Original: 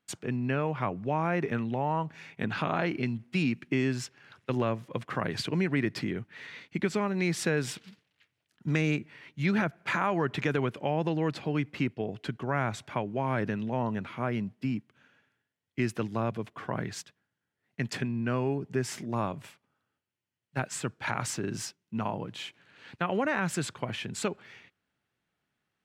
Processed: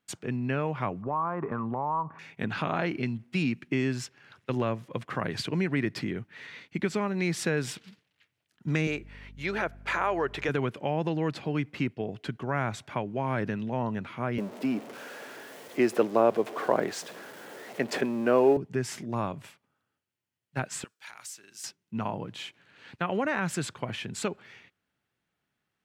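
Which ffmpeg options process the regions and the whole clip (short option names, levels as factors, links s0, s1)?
-filter_complex "[0:a]asettb=1/sr,asplit=3[s0][s1][s2];[s0]atrim=end=1.024[s3];[s1]atrim=start=1.02:end=2.19,asetpts=PTS-STARTPTS,afade=t=in:d=0.004:c=qsin,afade=t=out:st=1.166:d=0.004:c=qsin,lowpass=f=1100:t=q:w=8.6,acompressor=threshold=0.0447:ratio=4:attack=3.2:release=140:knee=1:detection=peak[s4];[s2]atrim=start=2.186[s5];[s3][s4]acrossfade=d=0.004:c1=hsin:c2=qsin[s6];[s6][s5]acrossfade=d=0.004:c1=qsin:c2=hsin,asettb=1/sr,asplit=3[s7][s8][s9];[s7]atrim=end=8.874[s10];[s8]atrim=start=8.87:end=10.49,asetpts=PTS-STARTPTS,afade=t=in:d=0.004:c=qsin,afade=t=out:st=1.616:d=0.004:c=qsin,lowshelf=f=300:t=q:w=1.5:g=-9.5,aeval=exprs='val(0)+0.00447*(sin(2*PI*50*n/s)+sin(2*PI*2*50*n/s)/2+sin(2*PI*3*50*n/s)/3+sin(2*PI*4*50*n/s)/4+sin(2*PI*5*50*n/s)/5)':c=same[s11];[s9]atrim=start=10.486[s12];[s10][s11]acrossfade=d=0.004:c1=hsin:c2=qsin[s13];[s13][s12]acrossfade=d=0.004:c1=qsin:c2=hsin,asettb=1/sr,asplit=3[s14][s15][s16];[s14]atrim=end=14.384[s17];[s15]atrim=start=14.38:end=18.57,asetpts=PTS-STARTPTS,afade=t=in:d=0.004:c=qsin,afade=t=out:st=4.186:d=0.004:c=qsin,aeval=exprs='val(0)+0.5*0.00794*sgn(val(0))':c=same,highpass=270,equalizer=f=520:t=o:w=2:g=12.5[s18];[s16]atrim=start=18.566[s19];[s17][s18]acrossfade=d=0.004:c1=hsin:c2=qsin[s20];[s20][s19]acrossfade=d=0.004:c1=qsin:c2=hsin,asettb=1/sr,asplit=3[s21][s22][s23];[s21]atrim=end=20.844[s24];[s22]atrim=start=20.84:end=21.64,asetpts=PTS-STARTPTS,afade=t=in:d=0.004:c=qsin,afade=t=out:st=0.796:d=0.004:c=qsin,aderivative,acompressor=threshold=0.0112:ratio=3:attack=3.2:release=140:knee=1:detection=peak,volume=50.1,asoftclip=hard,volume=0.02[s25];[s23]atrim=start=21.636[s26];[s24][s25]acrossfade=d=0.004:c1=hsin:c2=qsin[s27];[s27][s26]acrossfade=d=0.004:c1=qsin:c2=hsin"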